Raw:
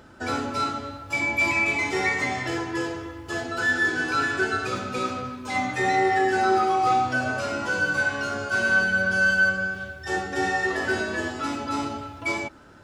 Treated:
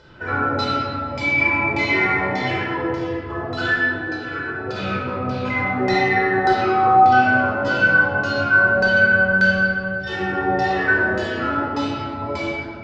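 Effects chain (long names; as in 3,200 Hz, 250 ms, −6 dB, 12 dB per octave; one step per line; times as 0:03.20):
0:03.74–0:05.55: compressor whose output falls as the input rises −33 dBFS, ratio −1
auto-filter low-pass saw down 1.7 Hz 520–4,900 Hz
rectangular room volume 2,300 cubic metres, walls mixed, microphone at 4.9 metres
level −4 dB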